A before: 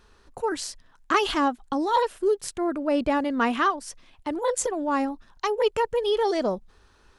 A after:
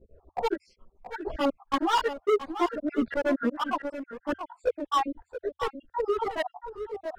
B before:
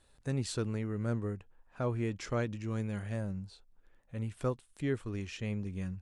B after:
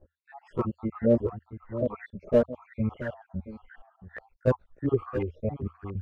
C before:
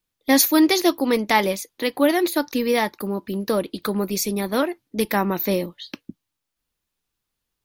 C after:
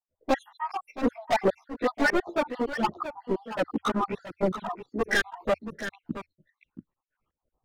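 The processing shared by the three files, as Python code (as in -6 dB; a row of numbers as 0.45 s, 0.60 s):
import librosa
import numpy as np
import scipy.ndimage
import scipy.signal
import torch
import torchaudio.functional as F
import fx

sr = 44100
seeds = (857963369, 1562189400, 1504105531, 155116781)

y = fx.spec_dropout(x, sr, seeds[0], share_pct=69)
y = fx.filter_lfo_lowpass(y, sr, shape='saw_up', hz=0.96, low_hz=510.0, high_hz=1800.0, q=3.3)
y = fx.peak_eq(y, sr, hz=82.0, db=3.5, octaves=0.24)
y = np.clip(y, -10.0 ** (-23.0 / 20.0), 10.0 ** (-23.0 / 20.0))
y = y + 10.0 ** (-11.0 / 20.0) * np.pad(y, (int(677 * sr / 1000.0), 0))[:len(y)]
y = fx.chorus_voices(y, sr, voices=2, hz=0.34, base_ms=15, depth_ms=2.8, mix_pct=70)
y = y * 10.0 ** (-30 / 20.0) / np.sqrt(np.mean(np.square(y)))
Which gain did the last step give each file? +4.0 dB, +11.0 dB, +5.0 dB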